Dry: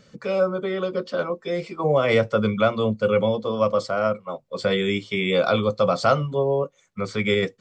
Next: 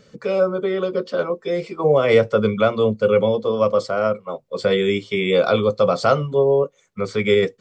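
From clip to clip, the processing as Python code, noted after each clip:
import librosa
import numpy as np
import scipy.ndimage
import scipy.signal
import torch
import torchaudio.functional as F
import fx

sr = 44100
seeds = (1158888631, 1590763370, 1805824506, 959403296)

y = fx.peak_eq(x, sr, hz=430.0, db=6.5, octaves=0.48)
y = y * librosa.db_to_amplitude(1.0)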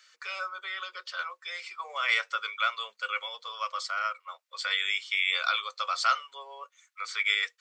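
y = scipy.signal.sosfilt(scipy.signal.butter(4, 1300.0, 'highpass', fs=sr, output='sos'), x)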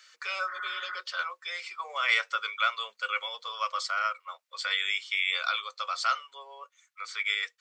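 y = fx.spec_repair(x, sr, seeds[0], start_s=0.51, length_s=0.43, low_hz=620.0, high_hz=2100.0, source='after')
y = fx.rider(y, sr, range_db=3, speed_s=2.0)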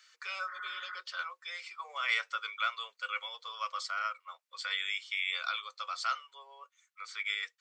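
y = scipy.signal.sosfilt(scipy.signal.butter(2, 380.0, 'highpass', fs=sr, output='sos'), x)
y = fx.peak_eq(y, sr, hz=590.0, db=-3.5, octaves=0.54)
y = y * librosa.db_to_amplitude(-5.5)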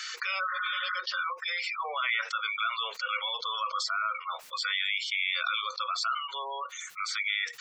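y = fx.spec_gate(x, sr, threshold_db=-20, keep='strong')
y = fx.env_flatten(y, sr, amount_pct=70)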